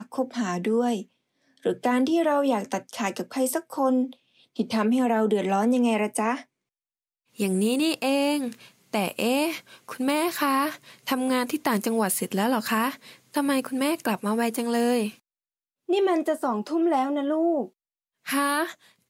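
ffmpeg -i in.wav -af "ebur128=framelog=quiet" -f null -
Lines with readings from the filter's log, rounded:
Integrated loudness:
  I:         -25.4 LUFS
  Threshold: -35.8 LUFS
Loudness range:
  LRA:         1.7 LU
  Threshold: -45.9 LUFS
  LRA low:   -26.7 LUFS
  LRA high:  -25.0 LUFS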